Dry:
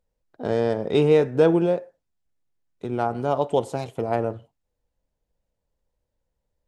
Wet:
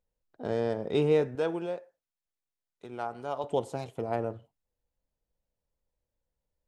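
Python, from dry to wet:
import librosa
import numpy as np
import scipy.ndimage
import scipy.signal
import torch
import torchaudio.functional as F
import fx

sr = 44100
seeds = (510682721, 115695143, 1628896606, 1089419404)

y = fx.low_shelf(x, sr, hz=430.0, db=-12.0, at=(1.35, 3.44))
y = y * 10.0 ** (-7.0 / 20.0)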